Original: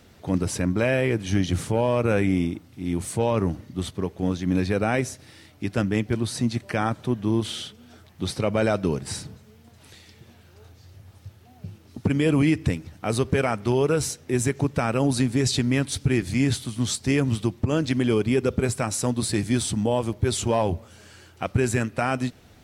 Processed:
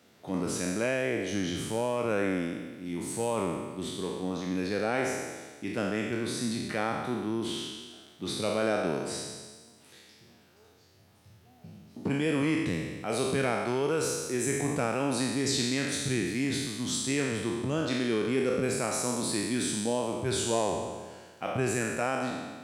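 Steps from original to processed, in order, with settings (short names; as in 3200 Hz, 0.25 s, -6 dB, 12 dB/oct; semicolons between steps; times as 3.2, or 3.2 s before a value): spectral trails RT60 1.48 s; HPF 180 Hz 12 dB/oct; gain -8 dB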